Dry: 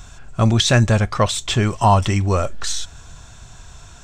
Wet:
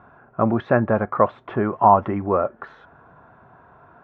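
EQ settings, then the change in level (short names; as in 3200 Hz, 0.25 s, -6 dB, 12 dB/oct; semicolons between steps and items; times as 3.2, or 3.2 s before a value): HPF 250 Hz 12 dB/oct; LPF 1400 Hz 24 dB/oct; +2.0 dB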